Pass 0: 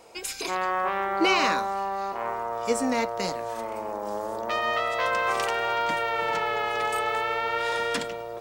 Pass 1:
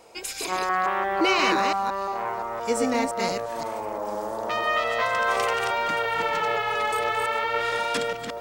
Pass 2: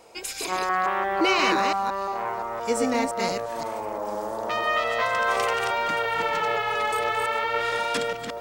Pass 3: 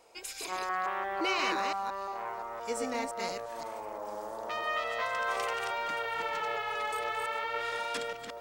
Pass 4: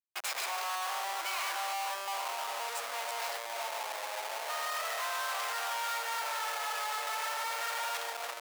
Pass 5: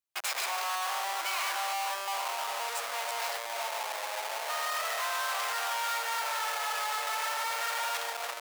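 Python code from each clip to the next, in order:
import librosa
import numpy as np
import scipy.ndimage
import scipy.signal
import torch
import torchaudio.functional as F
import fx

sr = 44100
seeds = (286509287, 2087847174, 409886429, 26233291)

y1 = fx.reverse_delay(x, sr, ms=173, wet_db=-3)
y2 = y1
y3 = fx.peak_eq(y2, sr, hz=150.0, db=-6.5, octaves=2.3)
y3 = F.gain(torch.from_numpy(y3), -8.0).numpy()
y4 = fx.leveller(y3, sr, passes=2)
y4 = fx.schmitt(y4, sr, flips_db=-33.0)
y4 = scipy.signal.sosfilt(scipy.signal.butter(4, 680.0, 'highpass', fs=sr, output='sos'), y4)
y4 = F.gain(torch.from_numpy(y4), -5.5).numpy()
y5 = fx.low_shelf(y4, sr, hz=280.0, db=-5.5)
y5 = F.gain(torch.from_numpy(y5), 3.0).numpy()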